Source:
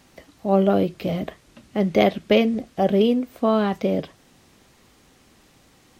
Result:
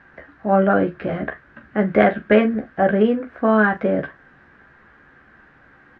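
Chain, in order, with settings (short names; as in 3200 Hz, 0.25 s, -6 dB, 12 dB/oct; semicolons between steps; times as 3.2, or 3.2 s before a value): synth low-pass 1600 Hz, resonance Q 8.7; early reflections 14 ms -6 dB, 42 ms -12.5 dB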